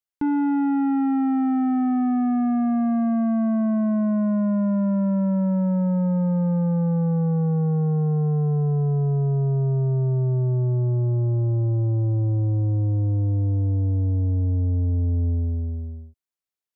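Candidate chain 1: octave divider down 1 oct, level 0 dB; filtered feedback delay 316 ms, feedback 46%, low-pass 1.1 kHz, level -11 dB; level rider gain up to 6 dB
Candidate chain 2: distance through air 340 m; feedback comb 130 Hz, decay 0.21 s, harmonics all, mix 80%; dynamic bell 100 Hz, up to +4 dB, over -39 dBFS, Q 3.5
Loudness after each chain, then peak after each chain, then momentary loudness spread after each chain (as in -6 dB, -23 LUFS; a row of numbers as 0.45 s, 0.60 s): -14.0 LUFS, -28.5 LUFS; -5.0 dBFS, -18.0 dBFS; 2 LU, 9 LU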